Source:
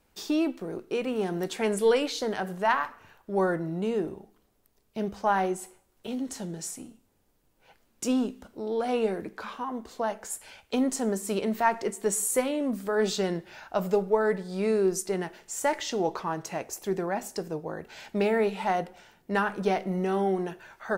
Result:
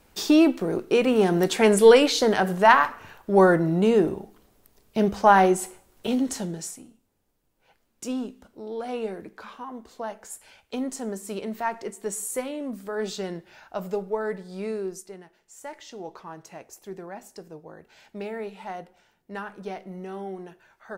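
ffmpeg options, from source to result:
ffmpeg -i in.wav -af "volume=16dB,afade=type=out:start_time=6.11:duration=0.71:silence=0.223872,afade=type=out:start_time=14.59:duration=0.64:silence=0.251189,afade=type=in:start_time=15.23:duration=1.13:silence=0.446684" out.wav

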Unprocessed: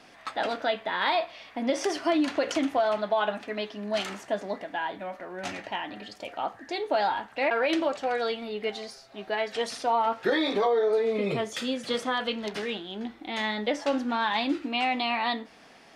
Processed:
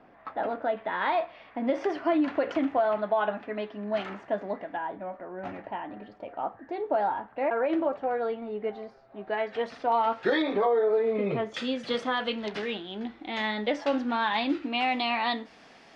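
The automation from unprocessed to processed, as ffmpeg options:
ffmpeg -i in.wav -af "asetnsamples=nb_out_samples=441:pad=0,asendcmd='0.77 lowpass f 1900;4.77 lowpass f 1200;9.27 lowpass f 2000;9.92 lowpass f 4700;10.42 lowpass f 2000;11.54 lowpass f 4200;14.88 lowpass f 7000',lowpass=1200" out.wav

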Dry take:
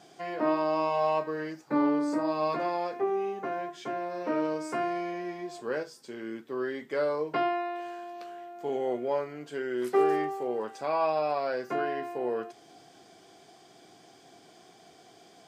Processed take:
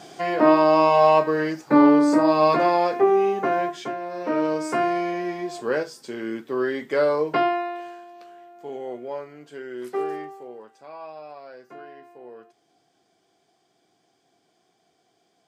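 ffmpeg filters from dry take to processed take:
ffmpeg -i in.wav -af "volume=17.5dB,afade=type=out:start_time=3.66:duration=0.31:silence=0.334965,afade=type=in:start_time=3.97:duration=0.7:silence=0.473151,afade=type=out:start_time=7.28:duration=0.78:silence=0.281838,afade=type=out:start_time=9.98:duration=0.73:silence=0.354813" out.wav

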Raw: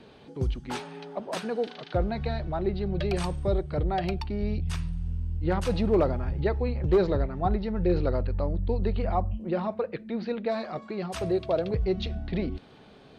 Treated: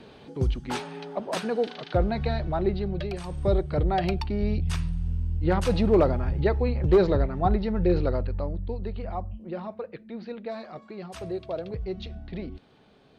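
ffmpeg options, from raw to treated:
ffmpeg -i in.wav -af "volume=15dB,afade=type=out:start_time=2.66:duration=0.58:silence=0.251189,afade=type=in:start_time=3.24:duration=0.21:silence=0.251189,afade=type=out:start_time=7.71:duration=1.09:silence=0.354813" out.wav

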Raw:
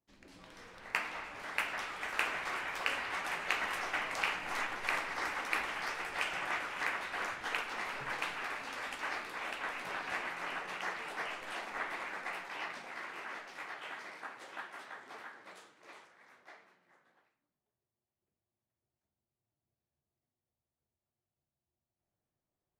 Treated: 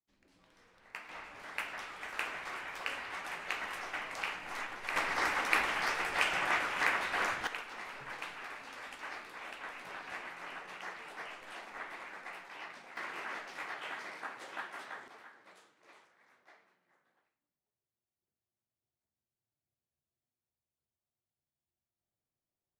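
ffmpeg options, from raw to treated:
ffmpeg -i in.wav -af "asetnsamples=nb_out_samples=441:pad=0,asendcmd='1.09 volume volume -4dB;4.96 volume volume 5dB;7.47 volume volume -5.5dB;12.97 volume volume 2.5dB;15.08 volume volume -6dB',volume=-11.5dB" out.wav

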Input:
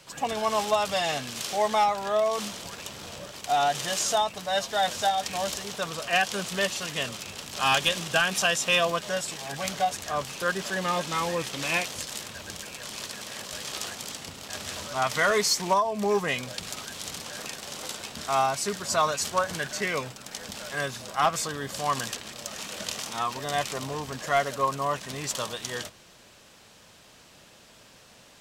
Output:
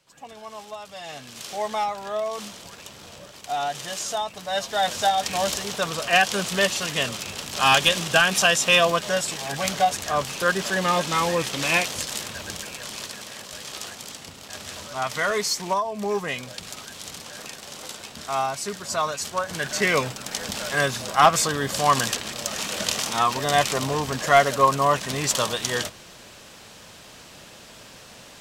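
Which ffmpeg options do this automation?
ffmpeg -i in.wav -af "volume=14.5dB,afade=type=in:start_time=0.94:duration=0.59:silence=0.316228,afade=type=in:start_time=4.19:duration=1.23:silence=0.375837,afade=type=out:start_time=12.4:duration=1.01:silence=0.473151,afade=type=in:start_time=19.46:duration=0.44:silence=0.354813" out.wav

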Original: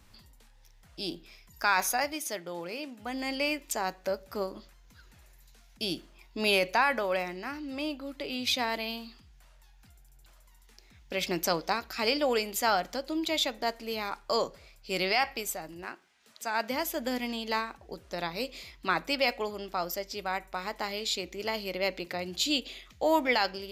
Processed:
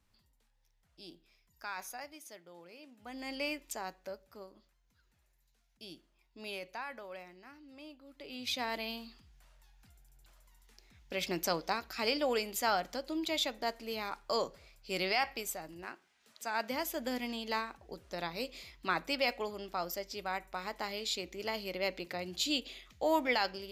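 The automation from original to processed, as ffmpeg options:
ffmpeg -i in.wav -af "volume=6dB,afade=type=in:start_time=2.8:duration=0.65:silence=0.334965,afade=type=out:start_time=3.45:duration=0.95:silence=0.298538,afade=type=in:start_time=8.06:duration=0.74:silence=0.237137" out.wav

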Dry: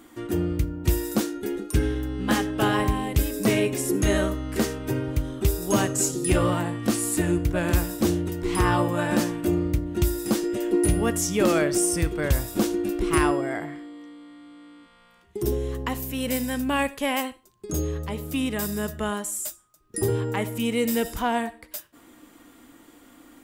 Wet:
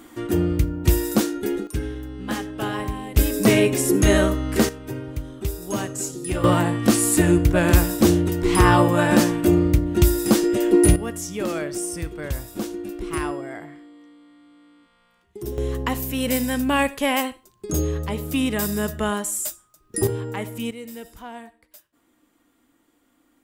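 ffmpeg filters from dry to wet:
ffmpeg -i in.wav -af "asetnsamples=nb_out_samples=441:pad=0,asendcmd='1.67 volume volume -4.5dB;3.17 volume volume 5.5dB;4.69 volume volume -4.5dB;6.44 volume volume 6.5dB;10.96 volume volume -5.5dB;15.58 volume volume 4dB;20.07 volume volume -2.5dB;20.71 volume volume -13dB',volume=4.5dB" out.wav

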